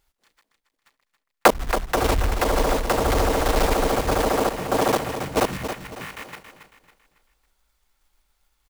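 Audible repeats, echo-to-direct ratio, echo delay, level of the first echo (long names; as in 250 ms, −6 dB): 4, −9.0 dB, 276 ms, −9.5 dB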